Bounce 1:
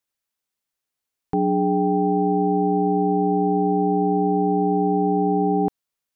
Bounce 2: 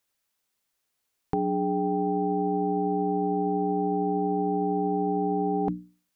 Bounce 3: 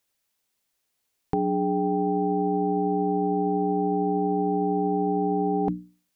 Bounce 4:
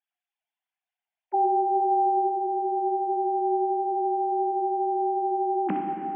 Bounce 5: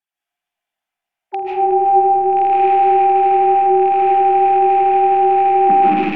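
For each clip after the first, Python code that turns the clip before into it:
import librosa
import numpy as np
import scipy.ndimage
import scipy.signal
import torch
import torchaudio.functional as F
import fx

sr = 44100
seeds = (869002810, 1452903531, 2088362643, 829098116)

y1 = fx.hum_notches(x, sr, base_hz=60, count=5)
y1 = fx.over_compress(y1, sr, threshold_db=-26.0, ratio=-1.0)
y2 = fx.peak_eq(y1, sr, hz=1300.0, db=-3.0, octaves=0.77)
y2 = y2 * 10.0 ** (2.0 / 20.0)
y3 = fx.sine_speech(y2, sr)
y3 = fx.echo_feedback(y3, sr, ms=476, feedback_pct=43, wet_db=-9)
y3 = fx.rev_plate(y3, sr, seeds[0], rt60_s=3.0, hf_ratio=0.85, predelay_ms=0, drr_db=1.0)
y3 = y3 * 10.0 ** (1.5 / 20.0)
y4 = fx.rattle_buzz(y3, sr, strikes_db=-42.0, level_db=-20.0)
y4 = fx.env_lowpass_down(y4, sr, base_hz=610.0, full_db=-19.0)
y4 = fx.rev_freeverb(y4, sr, rt60_s=1.6, hf_ratio=0.3, predelay_ms=110, drr_db=-7.5)
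y4 = y4 * 10.0 ** (2.0 / 20.0)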